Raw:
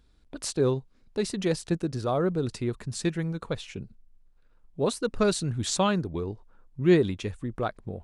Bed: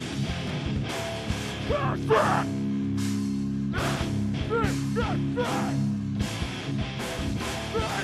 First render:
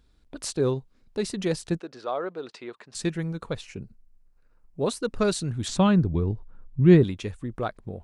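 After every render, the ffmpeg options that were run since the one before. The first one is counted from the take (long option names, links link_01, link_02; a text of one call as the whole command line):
ffmpeg -i in.wav -filter_complex "[0:a]asettb=1/sr,asplit=3[link_01][link_02][link_03];[link_01]atrim=end=1.804[link_04];[link_02]atrim=start=1.8:end=2.95,asetpts=PTS-STARTPTS,afade=type=in:duration=0.004:curve=qsin,afade=type=out:start_time=1.146:duration=0.004:curve=qsin,highpass=530,lowpass=4000[link_05];[link_03]atrim=start=2.946[link_06];[link_04][link_05]acrossfade=duration=0.004:curve1=hsin:curve2=qsin[link_07];[link_07][link_06]acrossfade=duration=0.004:curve1=qsin:curve2=hsin,asettb=1/sr,asplit=3[link_08][link_09][link_10];[link_08]atrim=end=3.614[link_11];[link_09]atrim=start=3.61:end=4.81,asetpts=PTS-STARTPTS,afade=type=in:duration=0.004:curve=qsin,afade=type=out:start_time=1.196:duration=0.004:curve=qsin,equalizer=frequency=3400:width=4:gain=-11[link_12];[link_10]atrim=start=4.806[link_13];[link_11][link_12]acrossfade=duration=0.004:curve1=hsin:curve2=qsin[link_14];[link_14][link_13]acrossfade=duration=0.004:curve1=qsin:curve2=hsin,asettb=1/sr,asplit=3[link_15][link_16][link_17];[link_15]atrim=end=5.684[link_18];[link_16]atrim=start=5.68:end=7.04,asetpts=PTS-STARTPTS,afade=type=in:duration=0.004:curve=qsin,afade=type=out:start_time=1.356:duration=0.004:curve=qsin,bass=frequency=250:gain=11,treble=frequency=4000:gain=-7[link_19];[link_17]atrim=start=7.036[link_20];[link_18][link_19]acrossfade=duration=0.004:curve1=hsin:curve2=qsin[link_21];[link_21][link_20]acrossfade=duration=0.004:curve1=qsin:curve2=hsin" out.wav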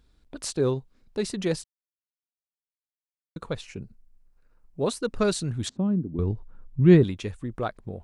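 ffmpeg -i in.wav -filter_complex "[0:a]asettb=1/sr,asplit=3[link_01][link_02][link_03];[link_01]atrim=end=5.694[link_04];[link_02]atrim=start=5.69:end=6.19,asetpts=PTS-STARTPTS,afade=type=in:duration=0.004:curve=qsin,afade=type=out:start_time=0.496:duration=0.004:curve=qsin,bandpass=frequency=260:width_type=q:width=2.3[link_05];[link_03]atrim=start=6.186[link_06];[link_04][link_05]acrossfade=duration=0.004:curve1=hsin:curve2=qsin[link_07];[link_07][link_06]acrossfade=duration=0.004:curve1=qsin:curve2=hsin,asplit=3[link_08][link_09][link_10];[link_08]atrim=end=1.64,asetpts=PTS-STARTPTS,afade=type=out:start_time=1.636:duration=0.004:curve=hsin[link_11];[link_09]atrim=start=1.64:end=3.36,asetpts=PTS-STARTPTS,volume=0[link_12];[link_10]atrim=start=3.36,asetpts=PTS-STARTPTS,afade=type=in:duration=0.004:curve=hsin[link_13];[link_11][link_12][link_13]concat=n=3:v=0:a=1" out.wav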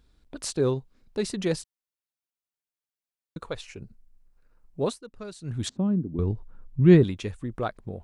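ffmpeg -i in.wav -filter_complex "[0:a]asettb=1/sr,asplit=3[link_01][link_02][link_03];[link_01]atrim=end=3.394[link_04];[link_02]atrim=start=3.39:end=3.82,asetpts=PTS-STARTPTS,afade=type=in:duration=0.004:curve=qsin,afade=type=out:start_time=0.426:duration=0.004:curve=qsin,equalizer=frequency=170:width_type=o:width=1.4:gain=-10[link_05];[link_03]atrim=start=3.816[link_06];[link_04][link_05]acrossfade=duration=0.004:curve1=hsin:curve2=qsin[link_07];[link_07][link_06]acrossfade=duration=0.004:curve1=qsin:curve2=hsin,asplit=3[link_08][link_09][link_10];[link_08]atrim=end=4.98,asetpts=PTS-STARTPTS,afade=type=out:start_time=4.81:duration=0.17:curve=qsin:silence=0.158489[link_11];[link_09]atrim=start=4.98:end=5.42,asetpts=PTS-STARTPTS,volume=-16dB[link_12];[link_10]atrim=start=5.42,asetpts=PTS-STARTPTS,afade=type=in:duration=0.17:curve=qsin:silence=0.158489[link_13];[link_11][link_12][link_13]concat=n=3:v=0:a=1" out.wav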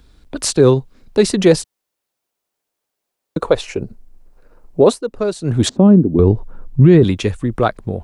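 ffmpeg -i in.wav -filter_complex "[0:a]acrossover=split=310|820[link_01][link_02][link_03];[link_02]dynaudnorm=framelen=210:gausssize=17:maxgain=11dB[link_04];[link_01][link_04][link_03]amix=inputs=3:normalize=0,alimiter=level_in=13.5dB:limit=-1dB:release=50:level=0:latency=1" out.wav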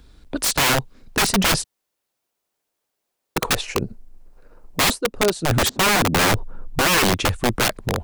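ffmpeg -i in.wav -af "aeval=exprs='(mod(3.98*val(0)+1,2)-1)/3.98':channel_layout=same" out.wav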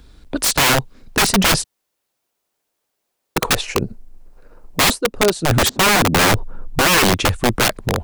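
ffmpeg -i in.wav -af "volume=3.5dB" out.wav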